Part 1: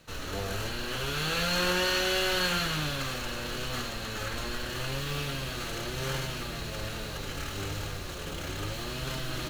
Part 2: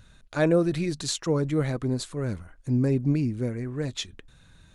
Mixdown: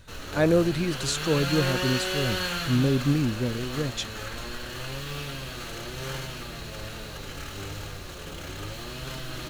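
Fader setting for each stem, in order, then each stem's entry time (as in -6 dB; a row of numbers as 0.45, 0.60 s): -1.5, +0.5 dB; 0.00, 0.00 s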